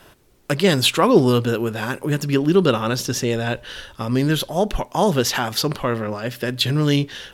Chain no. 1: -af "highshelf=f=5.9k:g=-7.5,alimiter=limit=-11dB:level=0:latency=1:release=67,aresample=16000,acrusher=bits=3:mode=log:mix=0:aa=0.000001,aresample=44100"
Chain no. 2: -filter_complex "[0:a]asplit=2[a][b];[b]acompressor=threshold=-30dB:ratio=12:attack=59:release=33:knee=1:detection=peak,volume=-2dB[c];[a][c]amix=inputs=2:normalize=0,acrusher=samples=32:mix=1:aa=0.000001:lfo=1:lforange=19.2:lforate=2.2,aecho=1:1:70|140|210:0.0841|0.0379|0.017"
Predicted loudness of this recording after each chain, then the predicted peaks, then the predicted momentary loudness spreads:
-22.0, -18.0 LUFS; -10.5, -2.0 dBFS; 7, 8 LU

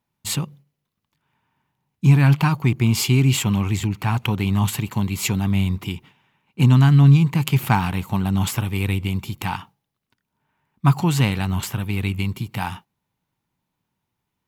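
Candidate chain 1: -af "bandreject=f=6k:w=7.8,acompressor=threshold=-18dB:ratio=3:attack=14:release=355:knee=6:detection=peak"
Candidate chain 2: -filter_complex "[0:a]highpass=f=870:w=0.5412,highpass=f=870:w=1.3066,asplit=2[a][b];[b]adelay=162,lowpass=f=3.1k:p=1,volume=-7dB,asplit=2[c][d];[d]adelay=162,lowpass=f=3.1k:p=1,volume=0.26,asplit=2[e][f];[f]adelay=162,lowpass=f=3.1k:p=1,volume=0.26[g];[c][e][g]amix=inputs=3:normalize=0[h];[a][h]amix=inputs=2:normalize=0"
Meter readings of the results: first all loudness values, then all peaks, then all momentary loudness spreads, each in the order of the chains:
-24.0, -29.0 LUFS; -6.5, -3.0 dBFS; 8, 11 LU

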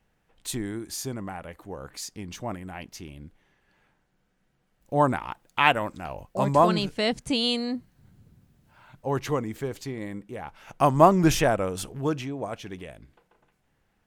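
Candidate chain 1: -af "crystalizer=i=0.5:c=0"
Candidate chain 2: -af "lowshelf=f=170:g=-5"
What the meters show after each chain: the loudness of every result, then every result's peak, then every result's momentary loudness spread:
-26.0, -26.5 LUFS; -2.5, -2.5 dBFS; 19, 19 LU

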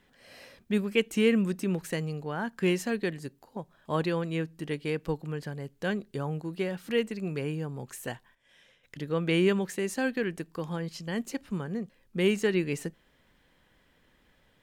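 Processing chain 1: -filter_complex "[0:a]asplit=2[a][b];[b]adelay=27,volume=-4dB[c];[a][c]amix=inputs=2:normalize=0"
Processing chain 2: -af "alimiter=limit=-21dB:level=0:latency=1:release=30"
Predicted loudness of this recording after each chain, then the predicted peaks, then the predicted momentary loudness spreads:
-29.5, -33.0 LUFS; -9.0, -21.0 dBFS; 14, 11 LU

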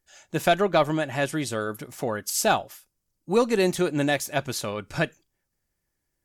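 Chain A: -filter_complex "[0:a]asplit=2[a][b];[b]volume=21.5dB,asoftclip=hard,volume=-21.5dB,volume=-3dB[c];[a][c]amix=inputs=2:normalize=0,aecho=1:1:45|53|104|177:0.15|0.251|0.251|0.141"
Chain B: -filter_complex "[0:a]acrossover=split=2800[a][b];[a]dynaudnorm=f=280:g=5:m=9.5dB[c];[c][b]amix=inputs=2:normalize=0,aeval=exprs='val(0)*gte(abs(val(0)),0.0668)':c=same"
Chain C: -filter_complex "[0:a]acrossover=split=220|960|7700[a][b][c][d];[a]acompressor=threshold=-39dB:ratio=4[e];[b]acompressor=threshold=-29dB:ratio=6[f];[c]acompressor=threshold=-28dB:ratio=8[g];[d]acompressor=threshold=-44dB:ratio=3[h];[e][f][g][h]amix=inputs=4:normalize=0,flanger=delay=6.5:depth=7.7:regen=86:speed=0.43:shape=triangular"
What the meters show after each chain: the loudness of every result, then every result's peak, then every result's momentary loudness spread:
-21.5, -19.0, -35.0 LUFS; -6.0, -1.5, -17.0 dBFS; 10, 10, 7 LU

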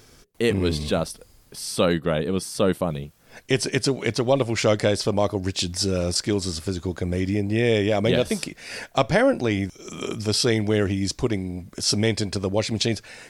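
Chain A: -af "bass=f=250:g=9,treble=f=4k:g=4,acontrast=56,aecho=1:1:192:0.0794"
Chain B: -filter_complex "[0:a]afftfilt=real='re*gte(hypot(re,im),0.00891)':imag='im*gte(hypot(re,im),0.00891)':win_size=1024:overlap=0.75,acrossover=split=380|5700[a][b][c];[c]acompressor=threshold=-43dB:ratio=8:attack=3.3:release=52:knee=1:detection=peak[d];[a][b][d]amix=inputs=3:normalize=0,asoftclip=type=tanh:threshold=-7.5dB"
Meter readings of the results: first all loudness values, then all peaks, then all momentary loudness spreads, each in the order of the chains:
-14.5, -24.5 LUFS; -1.5, -9.0 dBFS; 8, 8 LU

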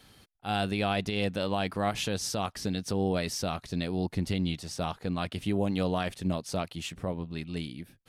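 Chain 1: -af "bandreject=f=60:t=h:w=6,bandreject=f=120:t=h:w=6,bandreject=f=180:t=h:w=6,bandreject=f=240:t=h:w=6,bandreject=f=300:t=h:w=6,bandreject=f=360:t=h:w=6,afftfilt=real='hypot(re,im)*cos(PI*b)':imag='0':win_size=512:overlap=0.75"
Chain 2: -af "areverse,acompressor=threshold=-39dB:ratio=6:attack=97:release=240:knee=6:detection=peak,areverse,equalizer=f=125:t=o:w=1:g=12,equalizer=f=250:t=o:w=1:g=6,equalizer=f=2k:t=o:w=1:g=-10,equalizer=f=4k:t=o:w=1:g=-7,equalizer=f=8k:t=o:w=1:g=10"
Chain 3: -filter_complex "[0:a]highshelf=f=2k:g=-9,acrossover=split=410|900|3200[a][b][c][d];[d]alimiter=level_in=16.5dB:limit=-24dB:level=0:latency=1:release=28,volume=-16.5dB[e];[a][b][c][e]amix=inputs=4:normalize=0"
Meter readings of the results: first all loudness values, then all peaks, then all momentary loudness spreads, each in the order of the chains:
-36.5, -32.5, -32.5 LUFS; -17.0, -17.0, -15.0 dBFS; 9, 3, 7 LU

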